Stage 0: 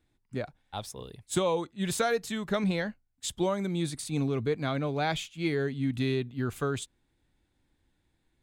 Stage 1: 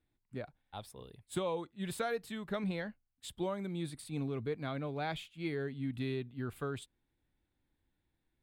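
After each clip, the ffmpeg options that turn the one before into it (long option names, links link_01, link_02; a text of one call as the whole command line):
ffmpeg -i in.wav -af "equalizer=frequency=6300:width_type=o:width=0.61:gain=-11.5,volume=-8dB" out.wav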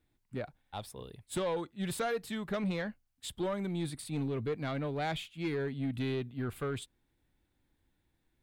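ffmpeg -i in.wav -af "asoftclip=type=tanh:threshold=-32dB,volume=5dB" out.wav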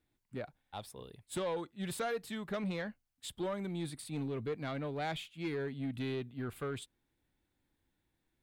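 ffmpeg -i in.wav -af "lowshelf=frequency=100:gain=-5.5,volume=-2.5dB" out.wav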